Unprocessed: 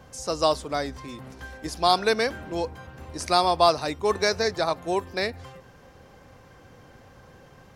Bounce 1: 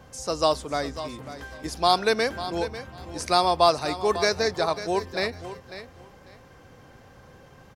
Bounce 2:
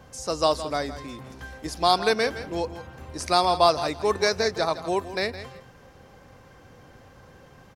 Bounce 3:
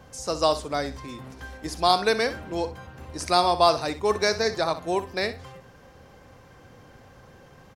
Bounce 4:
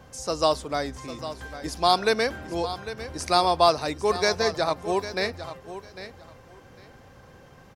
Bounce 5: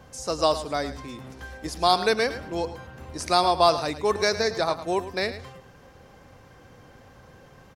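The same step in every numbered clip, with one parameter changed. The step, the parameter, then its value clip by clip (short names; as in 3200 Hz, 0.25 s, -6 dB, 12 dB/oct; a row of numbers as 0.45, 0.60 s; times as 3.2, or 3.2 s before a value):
feedback echo, time: 546, 165, 62, 801, 107 ms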